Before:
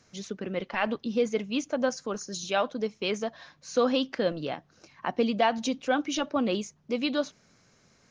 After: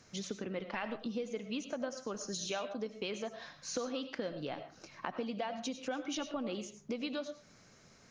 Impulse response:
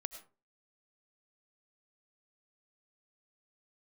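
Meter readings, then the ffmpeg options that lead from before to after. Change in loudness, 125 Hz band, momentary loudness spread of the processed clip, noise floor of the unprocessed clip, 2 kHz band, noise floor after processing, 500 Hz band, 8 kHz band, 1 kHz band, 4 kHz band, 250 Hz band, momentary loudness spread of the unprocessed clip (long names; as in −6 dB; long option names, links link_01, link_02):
−10.5 dB, −7.5 dB, 5 LU, −64 dBFS, −10.5 dB, −62 dBFS, −11.0 dB, −4.5 dB, −12.0 dB, −8.5 dB, −10.0 dB, 10 LU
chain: -filter_complex "[0:a]acompressor=threshold=-37dB:ratio=6[link_01];[1:a]atrim=start_sample=2205[link_02];[link_01][link_02]afir=irnorm=-1:irlink=0,volume=3.5dB"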